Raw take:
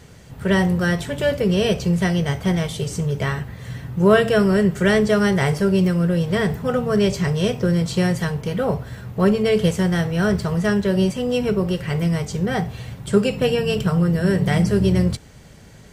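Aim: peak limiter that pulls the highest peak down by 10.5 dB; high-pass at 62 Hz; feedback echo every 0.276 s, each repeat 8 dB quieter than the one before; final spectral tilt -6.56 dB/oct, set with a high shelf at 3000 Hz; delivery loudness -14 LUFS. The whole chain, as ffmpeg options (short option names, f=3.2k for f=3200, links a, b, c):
-af "highpass=62,highshelf=f=3k:g=-7.5,alimiter=limit=-14dB:level=0:latency=1,aecho=1:1:276|552|828|1104|1380:0.398|0.159|0.0637|0.0255|0.0102,volume=8dB"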